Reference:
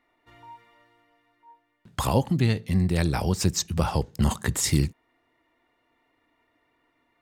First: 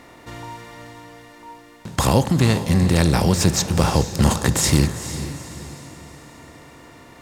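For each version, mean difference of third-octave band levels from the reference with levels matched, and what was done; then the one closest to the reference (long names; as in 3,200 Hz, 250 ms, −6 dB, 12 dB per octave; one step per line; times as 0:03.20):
8.0 dB: compressor on every frequency bin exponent 0.6
on a send: feedback delay with all-pass diffusion 452 ms, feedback 44%, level −11.5 dB
on the sum: level +3.5 dB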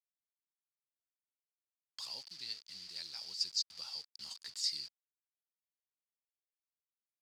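12.5 dB: bit reduction 6 bits
resonant band-pass 4,700 Hz, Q 11
level +3.5 dB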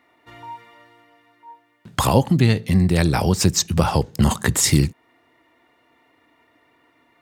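1.0 dB: in parallel at −1 dB: downward compressor, threshold −29 dBFS, peak gain reduction 12.5 dB
on the sum: high-pass filter 75 Hz
level +4.5 dB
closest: third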